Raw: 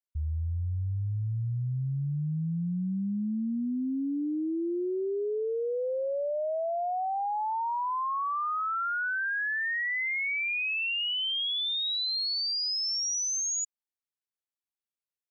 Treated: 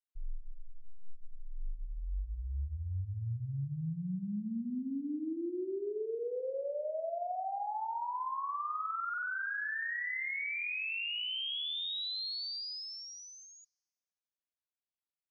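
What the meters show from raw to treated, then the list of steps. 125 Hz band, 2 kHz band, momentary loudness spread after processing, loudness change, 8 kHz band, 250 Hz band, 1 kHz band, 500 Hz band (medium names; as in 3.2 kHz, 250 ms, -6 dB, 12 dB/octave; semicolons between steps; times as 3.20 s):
-8.5 dB, -7.0 dB, 12 LU, -7.0 dB, no reading, -8.0 dB, -7.0 dB, -7.0 dB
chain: steep low-pass 4.9 kHz; frequency shift -99 Hz; spring tank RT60 1.5 s, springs 44 ms, chirp 40 ms, DRR 6 dB; trim -7.5 dB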